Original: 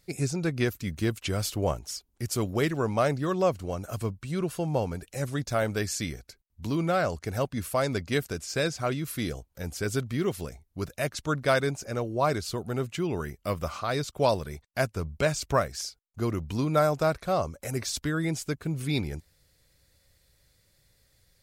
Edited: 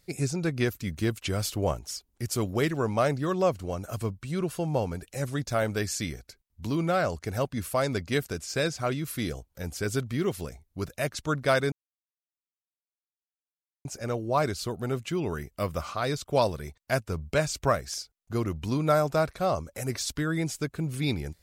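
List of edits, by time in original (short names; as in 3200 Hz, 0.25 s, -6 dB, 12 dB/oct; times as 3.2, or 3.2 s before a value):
11.72 insert silence 2.13 s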